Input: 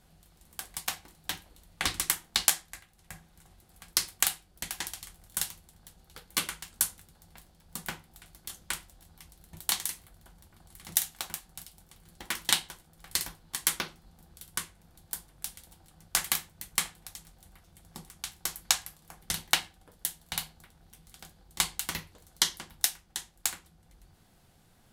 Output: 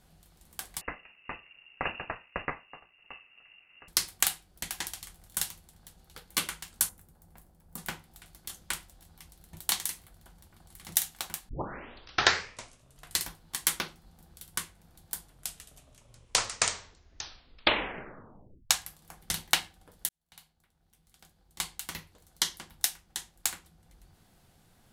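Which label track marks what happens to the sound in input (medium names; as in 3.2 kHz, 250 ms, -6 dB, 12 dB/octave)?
0.810000	3.880000	frequency inversion carrier 2.8 kHz
6.890000	7.780000	peaking EQ 3.8 kHz -12.5 dB 2.3 oct
11.490000	11.490000	tape start 1.72 s
15.160000	15.160000	tape stop 3.54 s
20.090000	23.320000	fade in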